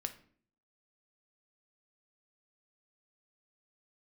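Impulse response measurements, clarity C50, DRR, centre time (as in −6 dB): 13.5 dB, 7.0 dB, 7 ms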